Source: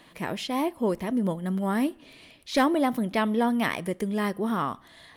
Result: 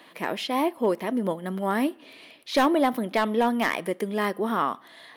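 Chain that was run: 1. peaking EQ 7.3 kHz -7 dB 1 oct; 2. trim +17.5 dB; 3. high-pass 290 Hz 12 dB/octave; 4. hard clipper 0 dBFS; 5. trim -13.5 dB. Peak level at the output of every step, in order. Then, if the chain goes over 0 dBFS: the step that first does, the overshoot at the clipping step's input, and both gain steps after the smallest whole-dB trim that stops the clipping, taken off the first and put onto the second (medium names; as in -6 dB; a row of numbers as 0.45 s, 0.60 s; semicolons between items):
-13.5 dBFS, +4.0 dBFS, +8.0 dBFS, 0.0 dBFS, -13.5 dBFS; step 2, 8.0 dB; step 2 +9.5 dB, step 5 -5.5 dB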